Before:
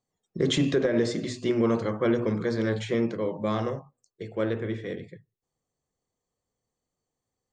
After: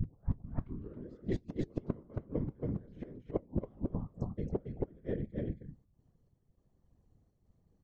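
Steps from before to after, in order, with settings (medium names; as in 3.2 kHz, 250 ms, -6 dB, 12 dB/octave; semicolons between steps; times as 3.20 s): tape start-up on the opening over 1.06 s; trance gate "x..xxxxx.xxx.x" 107 bpm -12 dB; tilt EQ -4.5 dB/octave; speed mistake 25 fps video run at 24 fps; inverted gate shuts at -16 dBFS, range -40 dB; peaking EQ 83 Hz +4 dB 0.29 oct; delay 274 ms -3.5 dB; compression 10:1, threshold -33 dBFS, peak gain reduction 14 dB; flange 0.62 Hz, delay 2.6 ms, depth 6.2 ms, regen +76%; whisper effect; gain riding within 5 dB 0.5 s; trim +7.5 dB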